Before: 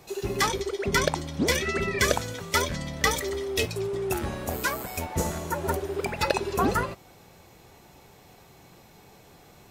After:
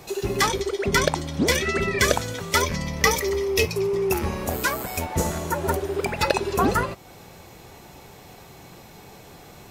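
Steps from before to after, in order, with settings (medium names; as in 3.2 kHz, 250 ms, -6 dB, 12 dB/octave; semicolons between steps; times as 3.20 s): 2.62–4.46 s: rippled EQ curve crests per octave 0.82, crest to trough 7 dB; in parallel at -2.5 dB: compression, threshold -40 dBFS, peak gain reduction 21 dB; on the sum: trim +2.5 dB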